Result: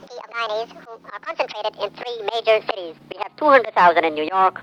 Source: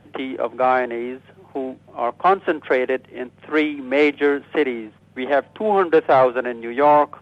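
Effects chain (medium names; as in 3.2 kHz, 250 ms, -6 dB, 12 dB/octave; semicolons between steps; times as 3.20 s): gliding tape speed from 187% -> 125%; slow attack 319 ms; trim +6 dB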